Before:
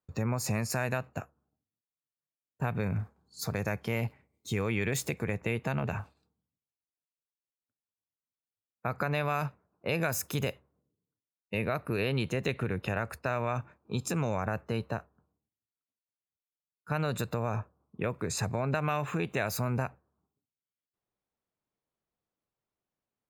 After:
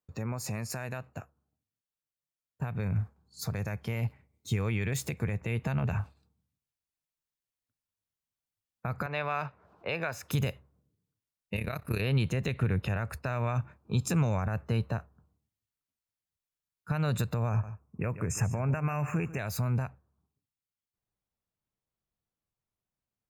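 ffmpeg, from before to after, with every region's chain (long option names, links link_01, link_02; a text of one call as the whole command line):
ffmpeg -i in.wav -filter_complex "[0:a]asettb=1/sr,asplit=3[link_01][link_02][link_03];[link_01]atrim=end=9.064[link_04];[link_02]atrim=start=9.06:end=10.31,asetpts=PTS-STARTPTS,afade=type=in:duration=0.004:curve=qsin,afade=type=out:start_time=1.246:duration=0.004:curve=qsin,acrossover=split=360 4700:gain=0.224 1 0.126[link_05][link_06][link_07];[link_05][link_06][link_07]amix=inputs=3:normalize=0,acompressor=mode=upward:threshold=-46dB:ratio=2.5:attack=3.2:release=140:knee=2.83:detection=peak[link_08];[link_03]atrim=start=10.306[link_09];[link_04][link_08]acrossfade=duration=0.004:curve1=hsin:curve2=qsin[link_10];[link_10][link_09]acrossfade=duration=0.004:curve1=qsin:curve2=hsin,asettb=1/sr,asplit=3[link_11][link_12][link_13];[link_11]atrim=end=11.564[link_14];[link_12]atrim=start=11.56:end=12.01,asetpts=PTS-STARTPTS,afade=type=in:duration=0.004:curve=qsin,afade=type=out:start_time=0.446:duration=0.004:curve=qsin,highshelf=frequency=3200:gain=12,tremolo=f=34:d=0.788[link_15];[link_13]atrim=start=12.006[link_16];[link_14][link_15]acrossfade=duration=0.004:curve1=hsin:curve2=qsin[link_17];[link_17][link_16]acrossfade=duration=0.004:curve1=qsin:curve2=hsin,asettb=1/sr,asplit=3[link_18][link_19][link_20];[link_18]atrim=end=17.494[link_21];[link_19]atrim=start=17.49:end=19.39,asetpts=PTS-STARTPTS,afade=type=in:duration=0.004:curve=qsin,afade=type=out:start_time=1.896:duration=0.004:curve=qsin,asuperstop=centerf=3800:order=20:qfactor=1.6,aecho=1:1:141:0.178,atrim=end_sample=83790[link_22];[link_20]atrim=start=19.386[link_23];[link_21][link_22]acrossfade=duration=0.004:curve1=hsin:curve2=qsin[link_24];[link_24][link_23]acrossfade=duration=0.004:curve1=qsin:curve2=hsin,alimiter=limit=-21.5dB:level=0:latency=1:release=169,asubboost=boost=2.5:cutoff=180,dynaudnorm=framelen=290:gausssize=31:maxgain=4.5dB,volume=-3dB" out.wav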